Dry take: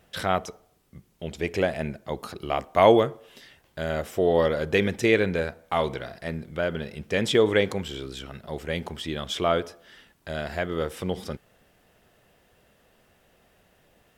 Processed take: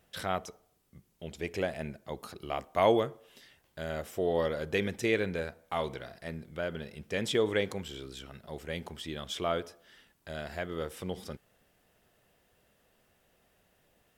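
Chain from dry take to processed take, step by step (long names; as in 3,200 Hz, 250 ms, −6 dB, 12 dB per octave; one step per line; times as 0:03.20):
high-shelf EQ 6,000 Hz +5 dB
level −8 dB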